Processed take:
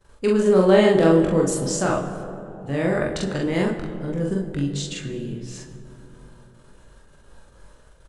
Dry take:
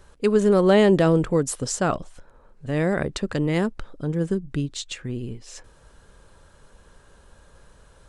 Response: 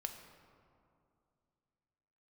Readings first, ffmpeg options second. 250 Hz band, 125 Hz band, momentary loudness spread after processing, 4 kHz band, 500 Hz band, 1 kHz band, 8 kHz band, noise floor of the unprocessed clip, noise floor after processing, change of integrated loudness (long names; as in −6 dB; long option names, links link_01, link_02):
+1.5 dB, 0.0 dB, 18 LU, +1.0 dB, +2.0 dB, +1.0 dB, +1.0 dB, −55 dBFS, −51 dBFS, +1.5 dB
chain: -filter_complex "[0:a]asplit=2[link_01][link_02];[link_02]adelay=22,volume=-7dB[link_03];[link_01][link_03]amix=inputs=2:normalize=0,agate=range=-17dB:threshold=-50dB:ratio=16:detection=peak,asplit=2[link_04][link_05];[1:a]atrim=start_sample=2205,asetrate=29988,aresample=44100,adelay=43[link_06];[link_05][link_06]afir=irnorm=-1:irlink=0,volume=0dB[link_07];[link_04][link_07]amix=inputs=2:normalize=0,volume=-2.5dB"